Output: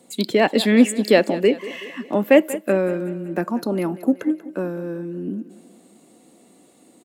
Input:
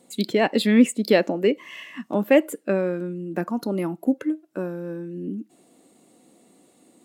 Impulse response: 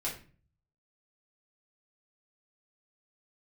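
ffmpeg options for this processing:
-filter_complex "[0:a]acrossover=split=180[link_01][link_02];[link_01]asoftclip=type=tanh:threshold=-37.5dB[link_03];[link_02]aecho=1:1:188|376|564|752|940:0.158|0.084|0.0445|0.0236|0.0125[link_04];[link_03][link_04]amix=inputs=2:normalize=0,volume=3.5dB"

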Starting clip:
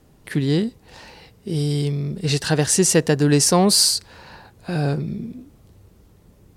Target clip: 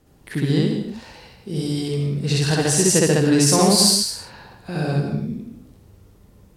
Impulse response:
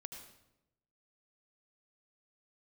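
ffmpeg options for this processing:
-filter_complex "[0:a]asplit=2[link_01][link_02];[1:a]atrim=start_sample=2205,afade=type=out:start_time=0.33:duration=0.01,atrim=end_sample=14994,adelay=65[link_03];[link_02][link_03]afir=irnorm=-1:irlink=0,volume=7dB[link_04];[link_01][link_04]amix=inputs=2:normalize=0,volume=-4dB"

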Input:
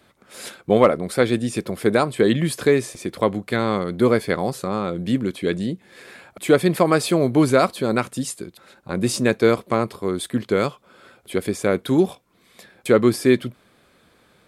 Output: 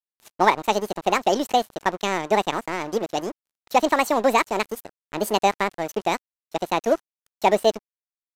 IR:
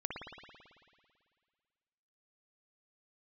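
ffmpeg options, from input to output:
-af "aeval=exprs='sgn(val(0))*max(abs(val(0))-0.0237,0)':channel_layout=same,asetrate=76440,aresample=44100,aresample=32000,aresample=44100,volume=-1.5dB"

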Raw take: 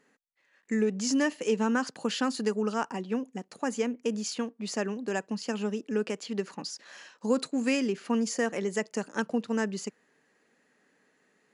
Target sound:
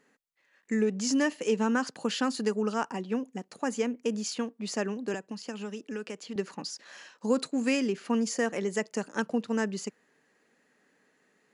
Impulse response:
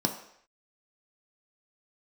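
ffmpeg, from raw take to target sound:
-filter_complex "[0:a]asettb=1/sr,asplit=3[link_01][link_02][link_03];[link_01]atrim=end=5.144[link_04];[link_02]atrim=start=5.14:end=6.36,asetpts=PTS-STARTPTS,afade=type=in:duration=0.004:curve=qsin,afade=type=out:start_time=1.216:duration=0.004:curve=qsin,acrossover=split=530|1200[link_05][link_06][link_07];[link_05]acompressor=threshold=-37dB:ratio=4[link_08];[link_06]acompressor=threshold=-47dB:ratio=4[link_09];[link_07]acompressor=threshold=-43dB:ratio=4[link_10];[link_08][link_09][link_10]amix=inputs=3:normalize=0[link_11];[link_03]atrim=start=6.356[link_12];[link_04][link_11]acrossfade=duration=0.004:curve1=hsin:curve2=qsin[link_13];[link_13][link_12]acrossfade=duration=0.004:curve1=qsin:curve2=hsin"

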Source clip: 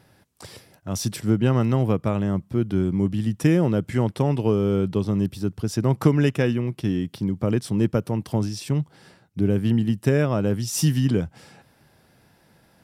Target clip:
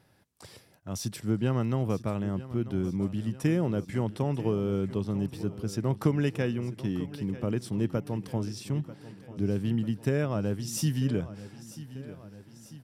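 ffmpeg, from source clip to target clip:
ffmpeg -i in.wav -af "aecho=1:1:942|1884|2826|3768|4710|5652:0.168|0.0974|0.0565|0.0328|0.019|0.011,volume=-7.5dB" out.wav

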